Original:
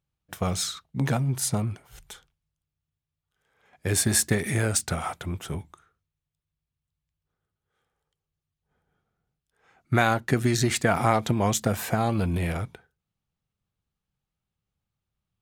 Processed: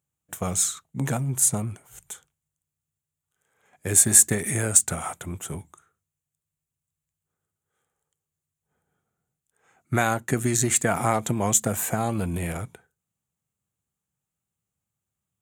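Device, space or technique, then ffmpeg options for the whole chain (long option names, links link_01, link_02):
budget condenser microphone: -af "highpass=85,highshelf=frequency=6000:width_type=q:width=3:gain=6.5,volume=-1dB"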